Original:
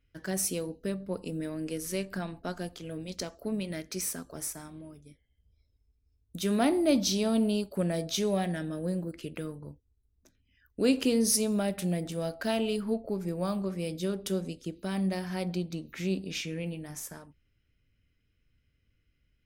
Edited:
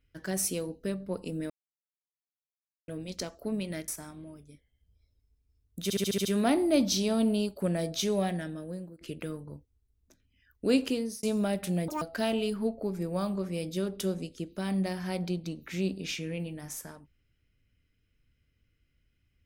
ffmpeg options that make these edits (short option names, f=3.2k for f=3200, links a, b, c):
-filter_complex "[0:a]asplit=14[a][b][c][d][e][f][g][h][i][j][k][l][m][n];[a]atrim=end=1.5,asetpts=PTS-STARTPTS,afade=t=out:st=1.496:d=0.004:c=hsin[o];[b]atrim=start=1.5:end=2.88,asetpts=PTS-STARTPTS,volume=0[p];[c]atrim=start=2.88:end=3.882,asetpts=PTS-STARTPTS,afade=t=in:d=0.004:c=hsin[q];[d]atrim=start=4.448:end=6.472[r];[e]atrim=start=6.398:end=6.472[s];[f]atrim=start=6.398:end=6.472[t];[g]atrim=start=6.398:end=6.472[u];[h]atrim=start=6.398:end=6.472[v];[i]atrim=start=6.398:end=6.472[w];[j]atrim=start=6.398:end=9.16,asetpts=PTS-STARTPTS,afade=t=out:st=1.992:d=0.77:silence=0.149624[x];[k]atrim=start=9.16:end=11.38,asetpts=PTS-STARTPTS,afade=t=in:d=0.004:c=hsin:silence=0.149624,afade=t=out:st=1.76:d=0.46[y];[l]atrim=start=11.38:end=12.034,asetpts=PTS-STARTPTS,afade=t=in:d=0.004:c=hsin[z];[m]atrim=start=12.03:end=12.28,asetpts=PTS-STARTPTS,asetrate=81144,aresample=44100[aa];[n]atrim=start=12.276[ab];[o][p][q]concat=n=3:v=0:a=1[ac];[ac][r]acrossfade=d=0.004:c1=hsin:c2=hsin[ad];[ad][s]acrossfade=d=0.004:c1=hsin:c2=hsin[ae];[ae][t]acrossfade=d=0.004:c1=hsin:c2=hsin[af];[af][u]acrossfade=d=0.004:c1=hsin:c2=hsin[ag];[ag][v]acrossfade=d=0.004:c1=hsin:c2=hsin[ah];[ah][w]acrossfade=d=0.004:c1=hsin:c2=hsin[ai];[x][y][z]concat=n=3:v=0:a=1[aj];[ai][aj]acrossfade=d=0.004:c1=hsin:c2=hsin[ak];[ak][aa]acrossfade=d=0.004:c1=hsin:c2=hsin[al];[al][ab]acrossfade=d=0.004:c1=hsin:c2=hsin"